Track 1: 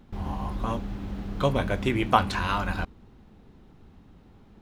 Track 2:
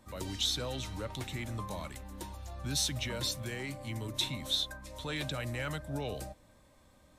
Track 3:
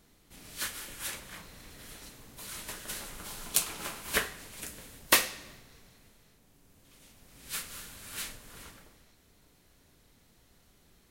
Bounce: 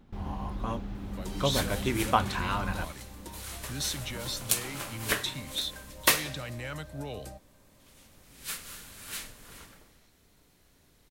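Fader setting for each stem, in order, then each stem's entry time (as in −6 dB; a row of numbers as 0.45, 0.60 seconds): −4.0, −1.5, 0.0 decibels; 0.00, 1.05, 0.95 seconds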